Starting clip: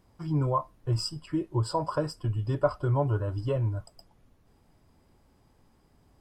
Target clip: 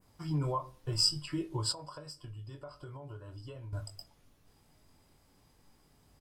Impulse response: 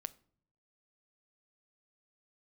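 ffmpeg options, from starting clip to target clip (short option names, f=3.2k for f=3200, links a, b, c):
-filter_complex "[0:a]asplit=2[a][b];[b]adelay=21,volume=-7dB[c];[a][c]amix=inputs=2:normalize=0,alimiter=limit=-22dB:level=0:latency=1:release=123,adynamicequalizer=threshold=0.00282:dfrequency=4100:dqfactor=0.74:tfrequency=4100:tqfactor=0.74:attack=5:release=100:ratio=0.375:range=2:mode=boostabove:tftype=bell[d];[1:a]atrim=start_sample=2205,afade=t=out:st=0.33:d=0.01,atrim=end_sample=14994[e];[d][e]afir=irnorm=-1:irlink=0,volume=23dB,asoftclip=hard,volume=-23dB,highshelf=f=2.1k:g=10,asettb=1/sr,asplit=3[f][g][h];[f]atrim=end=1.724[i];[g]atrim=start=1.72:end=3.73,asetpts=PTS-STARTPTS,afade=t=in:d=0.004:c=qsin,afade=t=out:st=2.006:d=0.004:c=qsin,acompressor=threshold=-48dB:ratio=2.5[j];[h]atrim=start=3.726[k];[i][j]acrossfade=d=0.004:c1=hsin:c2=qsin[l];[l][k]acrossfade=d=0.004:c1=qsin:c2=hsin,volume=-1.5dB"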